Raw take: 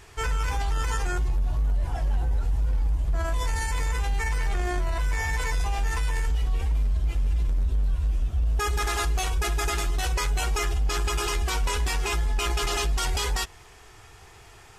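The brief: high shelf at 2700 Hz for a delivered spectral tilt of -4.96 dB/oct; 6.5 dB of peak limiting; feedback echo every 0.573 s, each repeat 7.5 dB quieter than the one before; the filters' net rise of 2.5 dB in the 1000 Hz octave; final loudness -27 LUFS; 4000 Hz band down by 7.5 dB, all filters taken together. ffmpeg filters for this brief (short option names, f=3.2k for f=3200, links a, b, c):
-af "equalizer=f=1k:t=o:g=4.5,highshelf=f=2.7k:g=-6.5,equalizer=f=4k:t=o:g=-5,alimiter=limit=-24dB:level=0:latency=1,aecho=1:1:573|1146|1719|2292|2865:0.422|0.177|0.0744|0.0312|0.0131,volume=4.5dB"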